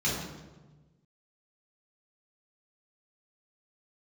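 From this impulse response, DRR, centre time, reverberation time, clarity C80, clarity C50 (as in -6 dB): -7.5 dB, 66 ms, 1.2 s, 4.0 dB, 1.0 dB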